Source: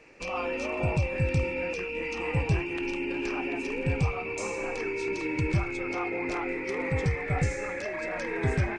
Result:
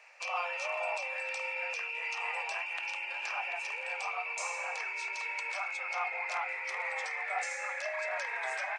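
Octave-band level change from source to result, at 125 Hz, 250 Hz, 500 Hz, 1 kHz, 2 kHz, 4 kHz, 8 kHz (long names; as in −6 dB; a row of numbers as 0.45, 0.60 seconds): below −40 dB, below −40 dB, −11.0 dB, 0.0 dB, 0.0 dB, 0.0 dB, 0.0 dB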